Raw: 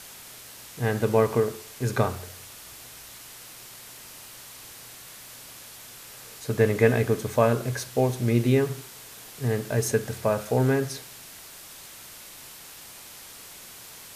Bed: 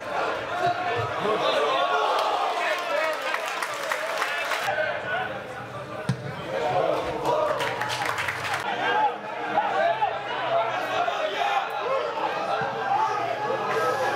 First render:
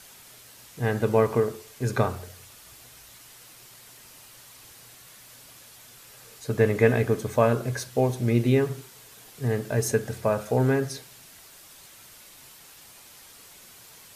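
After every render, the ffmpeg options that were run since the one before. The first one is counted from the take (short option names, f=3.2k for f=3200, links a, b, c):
-af "afftdn=nr=6:nf=-45"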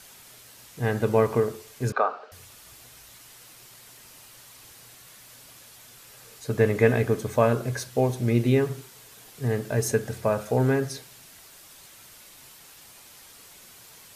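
-filter_complex "[0:a]asettb=1/sr,asplit=3[a][b][c];[a]atrim=end=1.924[d];[b]atrim=start=1.92:end=2.32,asetpts=PTS-STARTPTS,afade=t=in:d=0.004:c=qsin,afade=t=out:st=0.396:d=0.004:c=qsin,highpass=f=360:w=0.5412,highpass=f=360:w=1.3066,equalizer=f=360:t=q:w=4:g=-9,equalizer=f=730:t=q:w=4:g=5,equalizer=f=1.3k:t=q:w=4:g=10,equalizer=f=2k:t=q:w=4:g=-9,equalizer=f=3.4k:t=q:w=4:g=-8,lowpass=f=3.8k:w=0.5412,lowpass=f=3.8k:w=1.3066[e];[c]atrim=start=2.316[f];[d][e]acrossfade=d=0.004:c1=hsin:c2=qsin[g];[g][f]acrossfade=d=0.004:c1=qsin:c2=hsin"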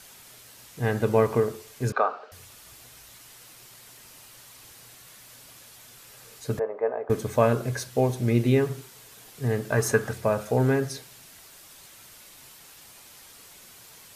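-filter_complex "[0:a]asettb=1/sr,asplit=3[a][b][c];[a]atrim=end=6.594[d];[b]atrim=start=6.59:end=7.1,asetpts=PTS-STARTPTS,afade=t=in:d=0.004:c=qsin,afade=t=out:st=0.506:d=0.004:c=qsin,asuperpass=centerf=740:order=4:qfactor=1.3[e];[c]atrim=start=7.096[f];[d][e]acrossfade=d=0.004:c1=hsin:c2=qsin[g];[g][f]acrossfade=d=0.004:c1=qsin:c2=hsin,asettb=1/sr,asplit=3[h][i][j];[h]atrim=end=9.724[k];[i]atrim=start=9.72:end=10.13,asetpts=PTS-STARTPTS,afade=t=in:d=0.004:c=qsin,afade=t=out:st=0.406:d=0.004:c=qsin,equalizer=f=1.2k:w=1.3:g=12[l];[j]atrim=start=10.126[m];[k][l]acrossfade=d=0.004:c1=hsin:c2=qsin[n];[n][m]acrossfade=d=0.004:c1=qsin:c2=hsin"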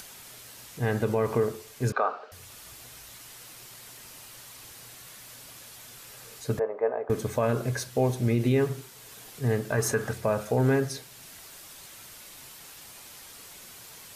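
-af "acompressor=mode=upward:threshold=-41dB:ratio=2.5,alimiter=limit=-14.5dB:level=0:latency=1:release=49"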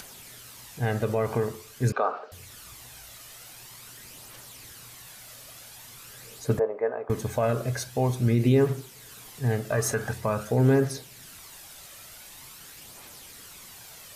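-af "aphaser=in_gain=1:out_gain=1:delay=1.7:decay=0.37:speed=0.46:type=triangular"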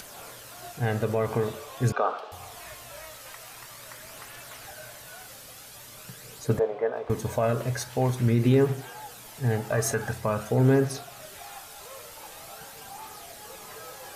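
-filter_complex "[1:a]volume=-20.5dB[a];[0:a][a]amix=inputs=2:normalize=0"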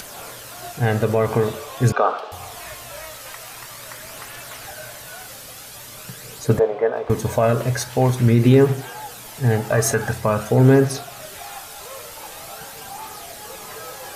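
-af "volume=7.5dB"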